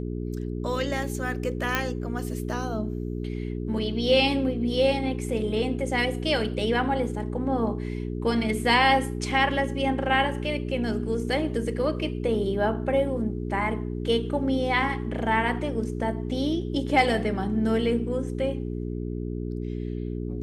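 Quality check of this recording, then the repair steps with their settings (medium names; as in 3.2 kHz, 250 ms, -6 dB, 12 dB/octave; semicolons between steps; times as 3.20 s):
hum 60 Hz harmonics 7 -31 dBFS
1.75 s: pop -9 dBFS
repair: de-click; de-hum 60 Hz, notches 7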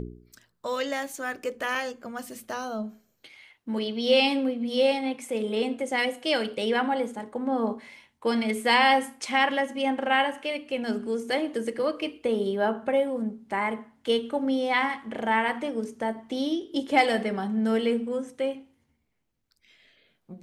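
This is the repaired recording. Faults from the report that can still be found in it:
nothing left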